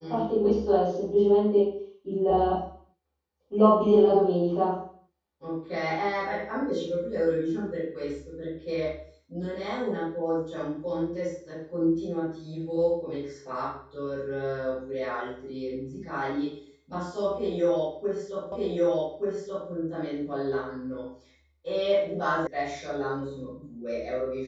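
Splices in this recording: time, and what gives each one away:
18.52 repeat of the last 1.18 s
22.47 sound cut off

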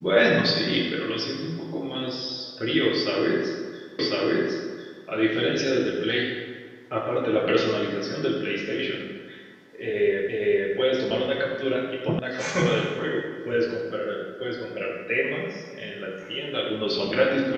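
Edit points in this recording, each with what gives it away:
3.99 repeat of the last 1.05 s
10.29 repeat of the last 0.46 s
12.19 sound cut off

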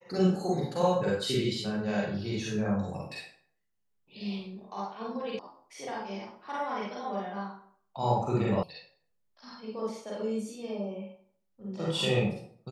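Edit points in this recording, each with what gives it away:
5.39 sound cut off
8.63 sound cut off

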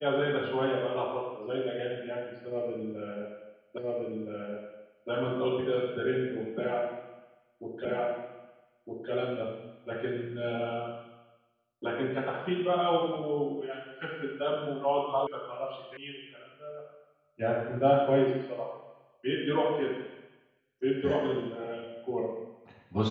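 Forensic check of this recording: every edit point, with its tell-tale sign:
3.78 repeat of the last 1.32 s
7.85 repeat of the last 1.26 s
15.27 sound cut off
15.97 sound cut off

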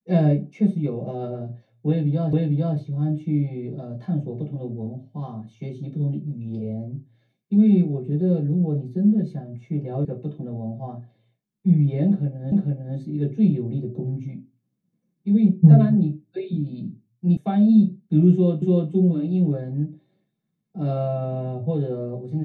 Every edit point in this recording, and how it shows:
2.33 repeat of the last 0.45 s
10.05 sound cut off
12.52 repeat of the last 0.45 s
17.37 sound cut off
18.62 repeat of the last 0.29 s

